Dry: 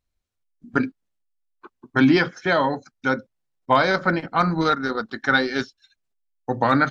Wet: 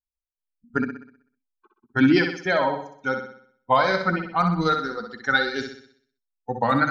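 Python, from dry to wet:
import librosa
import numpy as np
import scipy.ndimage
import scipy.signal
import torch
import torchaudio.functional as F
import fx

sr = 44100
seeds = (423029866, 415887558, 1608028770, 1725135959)

y = fx.bin_expand(x, sr, power=1.5)
y = fx.room_flutter(y, sr, wall_m=10.8, rt60_s=0.58)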